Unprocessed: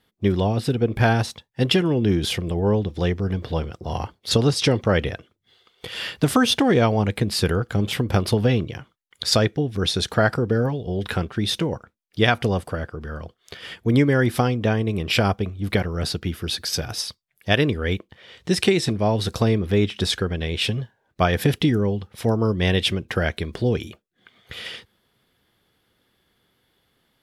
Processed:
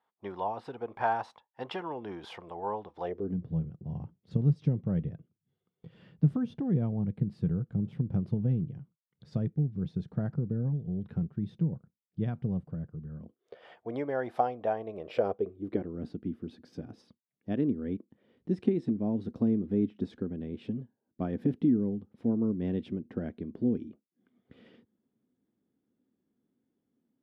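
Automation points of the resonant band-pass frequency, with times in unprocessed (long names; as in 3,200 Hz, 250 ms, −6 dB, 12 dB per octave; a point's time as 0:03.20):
resonant band-pass, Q 3.7
0:03.00 910 Hz
0:03.42 160 Hz
0:13.14 160 Hz
0:13.64 710 Hz
0:14.82 710 Hz
0:16.04 250 Hz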